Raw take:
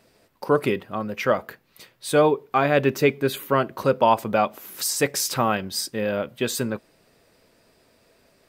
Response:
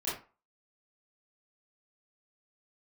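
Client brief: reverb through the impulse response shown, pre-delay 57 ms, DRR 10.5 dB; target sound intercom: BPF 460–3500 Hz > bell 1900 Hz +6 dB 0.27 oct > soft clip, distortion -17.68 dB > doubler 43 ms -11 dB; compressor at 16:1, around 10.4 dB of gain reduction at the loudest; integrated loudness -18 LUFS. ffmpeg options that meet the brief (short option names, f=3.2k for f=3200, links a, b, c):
-filter_complex "[0:a]acompressor=threshold=-23dB:ratio=16,asplit=2[a][b];[1:a]atrim=start_sample=2205,adelay=57[c];[b][c]afir=irnorm=-1:irlink=0,volume=-15.5dB[d];[a][d]amix=inputs=2:normalize=0,highpass=460,lowpass=3.5k,equalizer=f=1.9k:t=o:w=0.27:g=6,asoftclip=threshold=-21dB,asplit=2[e][f];[f]adelay=43,volume=-11dB[g];[e][g]amix=inputs=2:normalize=0,volume=15dB"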